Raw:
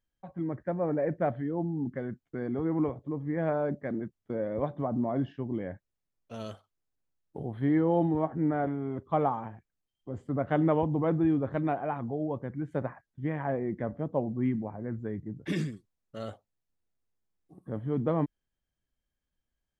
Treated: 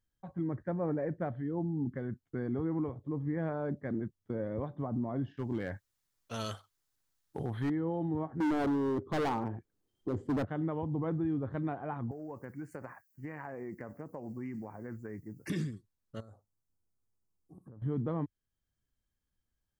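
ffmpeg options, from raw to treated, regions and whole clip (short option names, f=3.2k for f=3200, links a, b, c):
-filter_complex "[0:a]asettb=1/sr,asplit=3[a][b][c];[a]atrim=end=5.374[d];[b]atrim=start=5.37:end=7.7,asetpts=PTS-STARTPTS,afade=t=in:d=0.004:c=qsin,afade=t=out:st=2.326:d=0.004:c=qsin,tiltshelf=f=690:g=-6.5,acontrast=27,asoftclip=type=hard:threshold=-25dB[e];[c]atrim=start=7.696[f];[d][e]acrossfade=d=0.004:c1=hsin:c2=qsin[g];[g][f]acrossfade=d=0.004:c1=qsin:c2=hsin,asettb=1/sr,asplit=3[h][i][j];[h]atrim=end=8.404[k];[i]atrim=start=8.4:end=10.45,asetpts=PTS-STARTPTS,afade=t=in:d=0.004:c=qsin,afade=t=out:st=2.046:d=0.004:c=qsin,equalizer=f=370:t=o:w=1.7:g=14,acontrast=25,volume=18.5dB,asoftclip=hard,volume=-18.5dB[l];[j]atrim=start=10.446[m];[k][l]acrossfade=d=0.004:c1=hsin:c2=qsin[n];[n][m]acrossfade=d=0.004:c1=qsin:c2=hsin,asettb=1/sr,asplit=3[o][p][q];[o]atrim=end=12.114[r];[p]atrim=start=12.11:end=15.5,asetpts=PTS-STARTPTS,afade=t=in:d=0.004:c=qsin,afade=t=out:st=3.386:d=0.004:c=qsin,aemphasis=mode=production:type=riaa,acompressor=threshold=-36dB:ratio=6:attack=3.2:release=140:knee=1:detection=peak,asuperstop=centerf=3500:order=8:qfactor=2.4[s];[q]atrim=start=15.496[t];[r][s]acrossfade=d=0.004:c1=hsin:c2=qsin[u];[u][t]acrossfade=d=0.004:c1=qsin:c2=hsin,asettb=1/sr,asplit=3[v][w][x];[v]atrim=end=16.204[y];[w]atrim=start=16.2:end=17.82,asetpts=PTS-STARTPTS,afade=t=in:d=0.004:c=qsin,afade=t=out:st=1.616:d=0.004:c=qsin,acompressor=threshold=-48dB:ratio=16:attack=3.2:release=140:knee=1:detection=peak,asuperstop=centerf=2700:order=4:qfactor=0.71[z];[x]atrim=start=17.816[aa];[y][z]acrossfade=d=0.004:c1=hsin:c2=qsin[ab];[ab][aa]acrossfade=d=0.004:c1=qsin:c2=hsin,equalizer=f=100:t=o:w=0.67:g=6,equalizer=f=630:t=o:w=0.67:g=-5,equalizer=f=2.5k:t=o:w=0.67:g=-5,alimiter=level_in=1.5dB:limit=-24dB:level=0:latency=1:release=478,volume=-1.5dB"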